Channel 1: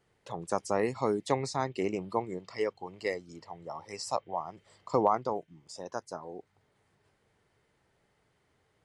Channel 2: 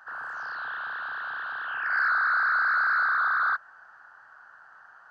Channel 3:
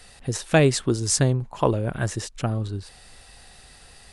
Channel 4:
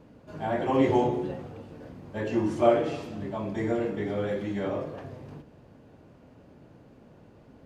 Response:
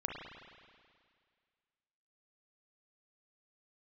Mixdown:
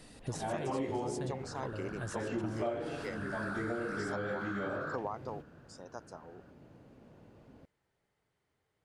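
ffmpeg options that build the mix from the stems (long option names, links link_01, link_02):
-filter_complex "[0:a]volume=-9dB,asplit=2[link_01][link_02];[1:a]adelay=1400,volume=-15.5dB[link_03];[2:a]volume=-9dB[link_04];[3:a]volume=-4dB[link_05];[link_02]apad=whole_len=181869[link_06];[link_04][link_06]sidechaincompress=threshold=-41dB:ratio=8:attack=7.4:release=460[link_07];[link_01][link_03][link_07][link_05]amix=inputs=4:normalize=0,acompressor=threshold=-33dB:ratio=4"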